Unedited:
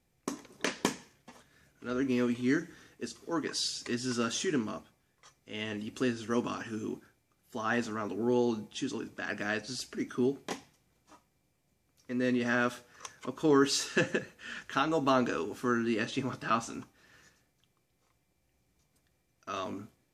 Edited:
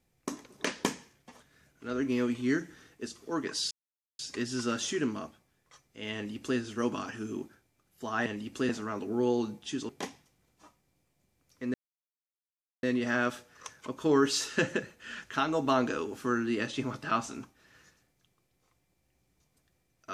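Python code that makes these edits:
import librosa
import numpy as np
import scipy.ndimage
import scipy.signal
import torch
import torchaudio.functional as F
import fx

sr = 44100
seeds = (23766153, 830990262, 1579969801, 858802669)

y = fx.edit(x, sr, fx.insert_silence(at_s=3.71, length_s=0.48),
    fx.duplicate(start_s=5.67, length_s=0.43, to_s=7.78),
    fx.cut(start_s=8.98, length_s=1.39),
    fx.insert_silence(at_s=12.22, length_s=1.09), tone=tone)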